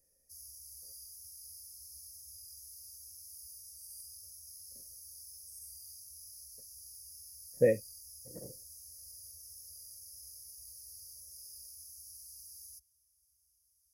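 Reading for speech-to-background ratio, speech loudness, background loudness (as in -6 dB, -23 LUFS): 18.5 dB, -30.0 LUFS, -48.5 LUFS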